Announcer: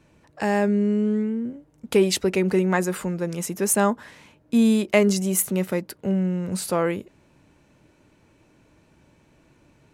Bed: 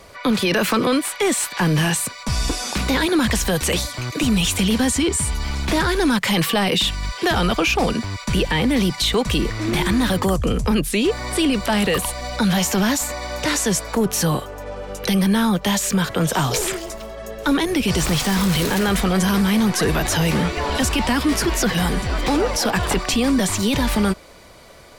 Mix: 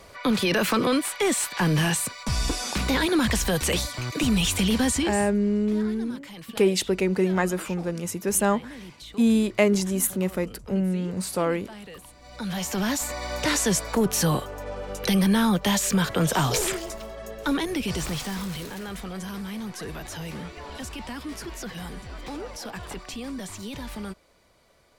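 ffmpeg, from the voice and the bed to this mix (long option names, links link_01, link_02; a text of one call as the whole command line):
ffmpeg -i stem1.wav -i stem2.wav -filter_complex "[0:a]adelay=4650,volume=-2dB[link_01];[1:a]volume=16.5dB,afade=type=out:start_time=4.94:duration=0.38:silence=0.105925,afade=type=in:start_time=12.19:duration=1.14:silence=0.0944061,afade=type=out:start_time=16.68:duration=2.02:silence=0.211349[link_02];[link_01][link_02]amix=inputs=2:normalize=0" out.wav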